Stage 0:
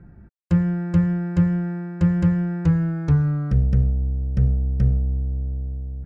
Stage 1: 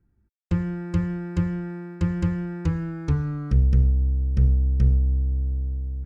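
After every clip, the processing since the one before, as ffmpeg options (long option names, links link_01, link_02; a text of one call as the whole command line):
ffmpeg -i in.wav -af "agate=range=-20dB:threshold=-33dB:ratio=16:detection=peak,equalizer=frequency=160:width_type=o:width=0.67:gain=-10,equalizer=frequency=630:width_type=o:width=0.67:gain=-11,equalizer=frequency=1600:width_type=o:width=0.67:gain=-5,volume=2dB" out.wav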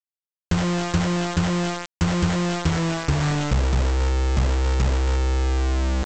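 ffmpeg -i in.wav -af "acompressor=threshold=-22dB:ratio=10,aresample=16000,acrusher=bits=4:mix=0:aa=0.000001,aresample=44100,volume=5dB" out.wav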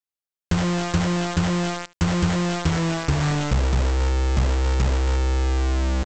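ffmpeg -i in.wav -af "aecho=1:1:73:0.0794" out.wav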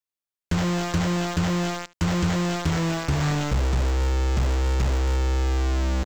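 ffmpeg -i in.wav -filter_complex "[0:a]asoftclip=type=hard:threshold=-14.5dB,acrossover=split=350|3800[link_01][link_02][link_03];[link_02]acrusher=bits=5:mode=log:mix=0:aa=0.000001[link_04];[link_01][link_04][link_03]amix=inputs=3:normalize=0,volume=-1.5dB" out.wav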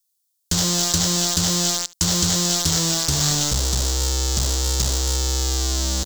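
ffmpeg -i in.wav -af "aexciter=amount=8.7:drive=5.2:freq=3500,volume=-1dB" out.wav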